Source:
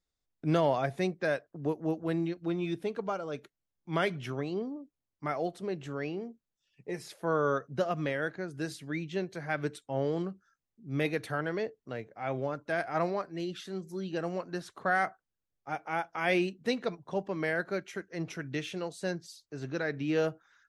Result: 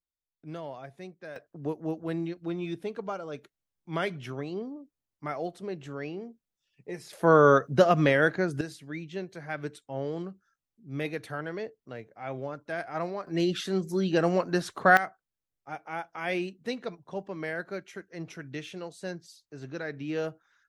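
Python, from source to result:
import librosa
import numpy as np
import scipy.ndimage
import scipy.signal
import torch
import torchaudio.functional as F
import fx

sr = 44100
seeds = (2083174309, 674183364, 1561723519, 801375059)

y = fx.gain(x, sr, db=fx.steps((0.0, -13.0), (1.36, -1.0), (7.13, 10.0), (8.61, -2.5), (13.27, 9.5), (14.97, -3.0)))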